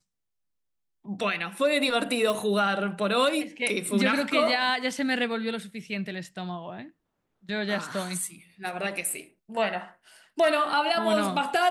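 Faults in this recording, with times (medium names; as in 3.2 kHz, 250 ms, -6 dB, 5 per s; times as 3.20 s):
2.30 s: pop -15 dBFS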